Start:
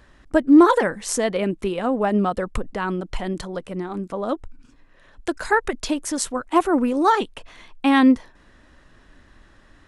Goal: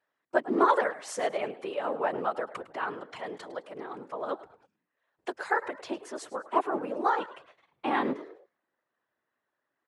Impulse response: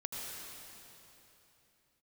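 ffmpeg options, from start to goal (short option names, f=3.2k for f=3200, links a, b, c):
-filter_complex "[0:a]asetnsamples=n=441:p=0,asendcmd='5.53 lowpass f 1100',lowpass=f=2.3k:p=1,agate=range=-18dB:threshold=-44dB:ratio=16:detection=peak,asplit=4[a][b][c][d];[b]adelay=105,afreqshift=67,volume=-17dB[e];[c]adelay=210,afreqshift=134,volume=-26.6dB[f];[d]adelay=315,afreqshift=201,volume=-36.3dB[g];[a][e][f][g]amix=inputs=4:normalize=0,afftfilt=real='hypot(re,im)*cos(2*PI*random(0))':imag='hypot(re,im)*sin(2*PI*random(1))':win_size=512:overlap=0.75,highpass=540,volume=2dB"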